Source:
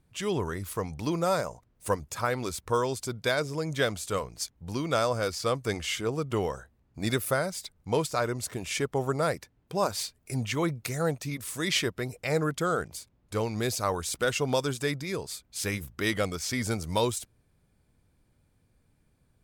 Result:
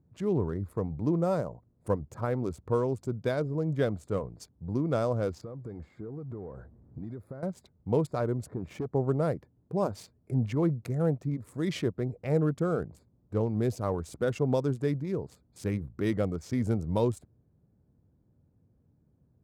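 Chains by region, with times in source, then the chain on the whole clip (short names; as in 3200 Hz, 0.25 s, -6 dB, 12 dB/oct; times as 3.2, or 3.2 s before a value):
5.41–7.43 compressor 5:1, threshold -42 dBFS + power-law curve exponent 0.7
8.46–8.92 high shelf 9800 Hz -10 dB + hard clip -30.5 dBFS
whole clip: Wiener smoothing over 15 samples; HPF 83 Hz; tilt shelf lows +9.5 dB, about 840 Hz; gain -4.5 dB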